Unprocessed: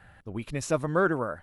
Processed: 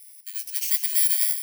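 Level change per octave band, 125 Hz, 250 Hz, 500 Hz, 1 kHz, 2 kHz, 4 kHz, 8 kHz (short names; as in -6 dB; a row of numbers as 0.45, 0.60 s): under -40 dB, under -40 dB, under -40 dB, under -35 dB, -6.5 dB, +15.0 dB, +17.0 dB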